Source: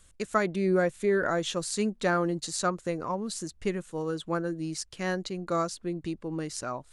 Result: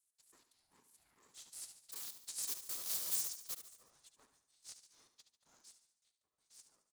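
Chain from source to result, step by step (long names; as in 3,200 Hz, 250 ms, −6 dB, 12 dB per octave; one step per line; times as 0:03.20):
source passing by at 0:03.01, 21 m/s, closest 3.5 metres
wrap-around overflow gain 33.5 dB
high-pass filter 690 Hz 24 dB per octave
first difference
soft clipping −27.5 dBFS, distortion −20 dB
random phases in short frames
flat-topped bell 1,900 Hz −15.5 dB
repeating echo 72 ms, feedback 50%, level −10 dB
ring modulator with a square carrier 340 Hz
level +4.5 dB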